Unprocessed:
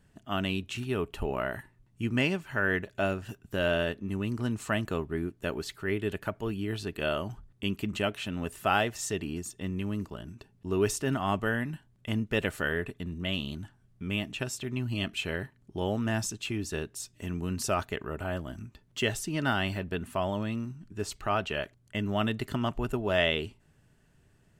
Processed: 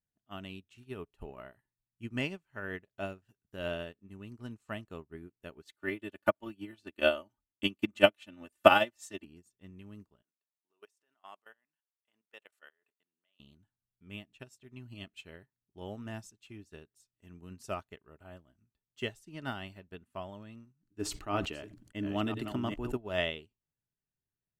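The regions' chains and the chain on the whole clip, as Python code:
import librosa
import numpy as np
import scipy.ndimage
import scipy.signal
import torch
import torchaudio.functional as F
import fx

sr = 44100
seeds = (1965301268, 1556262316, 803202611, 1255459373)

y = fx.chain(x, sr, fx.highpass(hz=180.0, slope=6),
    fx.comb(ms=3.4, depth=0.82),
    fx.transient(attack_db=6, sustain_db=-1), at=(5.65, 9.25))
y = fx.chain(y, sr, fx.highpass(hz=670.0, slope=12),
    fx.level_steps(step_db=16), at=(10.22, 13.4))
y = fx.chain(y, sr, fx.reverse_delay(ms=508, wet_db=-8.0),
    fx.peak_eq(hz=300.0, db=12.0, octaves=0.35),
    fx.sustainer(db_per_s=28.0), at=(20.82, 22.97))
y = fx.dynamic_eq(y, sr, hz=1600.0, q=5.2, threshold_db=-45.0, ratio=4.0, max_db=-4)
y = fx.upward_expand(y, sr, threshold_db=-42.0, expansion=2.5)
y = y * librosa.db_to_amplitude(4.5)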